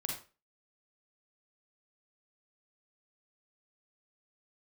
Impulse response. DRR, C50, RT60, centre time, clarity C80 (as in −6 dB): −0.5 dB, 3.0 dB, 0.35 s, 35 ms, 9.5 dB